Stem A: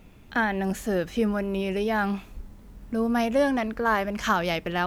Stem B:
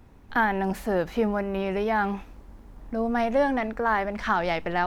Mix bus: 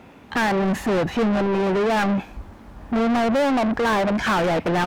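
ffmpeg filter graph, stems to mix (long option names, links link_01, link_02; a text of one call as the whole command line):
ffmpeg -i stem1.wav -i stem2.wav -filter_complex "[0:a]afwtdn=0.0447,volume=-3.5dB[link_01];[1:a]alimiter=limit=-21dB:level=0:latency=1:release=35,adelay=1.3,volume=-17.5dB[link_02];[link_01][link_02]amix=inputs=2:normalize=0,highpass=frequency=82:poles=1,lowshelf=frequency=430:gain=8,asplit=2[link_03][link_04];[link_04]highpass=frequency=720:poles=1,volume=35dB,asoftclip=type=tanh:threshold=-14dB[link_05];[link_03][link_05]amix=inputs=2:normalize=0,lowpass=frequency=2800:poles=1,volume=-6dB" out.wav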